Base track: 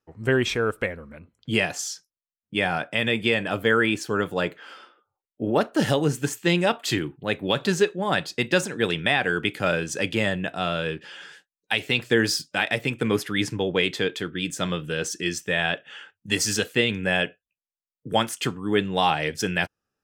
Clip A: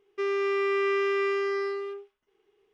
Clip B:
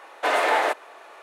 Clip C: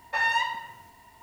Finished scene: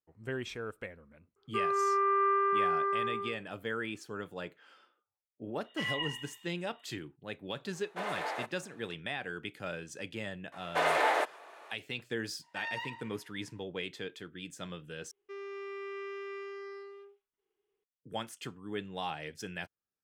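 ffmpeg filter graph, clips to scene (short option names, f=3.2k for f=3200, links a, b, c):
-filter_complex "[1:a]asplit=2[a][b];[3:a]asplit=2[c][d];[2:a]asplit=2[e][f];[0:a]volume=-16dB[g];[a]lowpass=f=1.3k:t=q:w=10[h];[c]lowpass=f=3.2k:t=q:w=0.5098,lowpass=f=3.2k:t=q:w=0.6013,lowpass=f=3.2k:t=q:w=0.9,lowpass=f=3.2k:t=q:w=2.563,afreqshift=-3800[i];[d]highpass=790,lowpass=5.5k[j];[g]asplit=2[k][l];[k]atrim=end=15.114[m];[b]atrim=end=2.73,asetpts=PTS-STARTPTS,volume=-15.5dB[n];[l]atrim=start=17.836[o];[h]atrim=end=2.73,asetpts=PTS-STARTPTS,volume=-8dB,afade=t=in:d=0.004:c=hsin,afade=t=out:st=2.726:d=0.004:c=hsin,adelay=1360[p];[i]atrim=end=1.22,asetpts=PTS-STARTPTS,volume=-11dB,afade=t=in:d=0.004:c=hsin,afade=t=out:st=1.216:d=0.004:c=hsin,adelay=5640[q];[e]atrim=end=1.22,asetpts=PTS-STARTPTS,volume=-16dB,afade=t=in:d=0.004:c=hsin,afade=t=out:st=1.216:d=0.004:c=hsin,adelay=7730[r];[f]atrim=end=1.22,asetpts=PTS-STARTPTS,volume=-6.5dB,afade=t=in:d=0.004:c=hsin,afade=t=out:st=1.216:d=0.004:c=hsin,adelay=10520[s];[j]atrim=end=1.22,asetpts=PTS-STARTPTS,volume=-14dB,afade=t=in:d=0.004:c=hsin,afade=t=out:st=1.216:d=0.004:c=hsin,adelay=12420[t];[m][n]acrossfade=d=0.004:c1=hsin:c2=hsin[u];[u][o]acrossfade=d=0.004:c1=hsin:c2=hsin[v];[v][p][q][r][s][t]amix=inputs=6:normalize=0"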